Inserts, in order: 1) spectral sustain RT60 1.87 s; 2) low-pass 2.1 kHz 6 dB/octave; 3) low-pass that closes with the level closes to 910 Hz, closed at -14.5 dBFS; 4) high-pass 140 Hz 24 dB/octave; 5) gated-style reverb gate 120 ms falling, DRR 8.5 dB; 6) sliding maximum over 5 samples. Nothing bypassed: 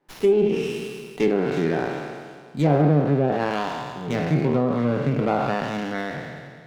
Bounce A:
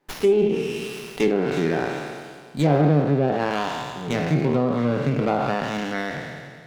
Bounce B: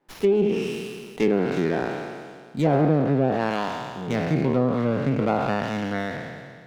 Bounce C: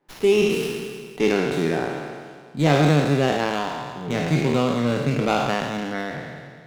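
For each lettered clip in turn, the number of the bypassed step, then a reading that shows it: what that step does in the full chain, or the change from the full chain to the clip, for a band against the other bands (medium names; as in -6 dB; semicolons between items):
2, 4 kHz band +3.0 dB; 5, 125 Hz band -1.5 dB; 3, 4 kHz band +7.5 dB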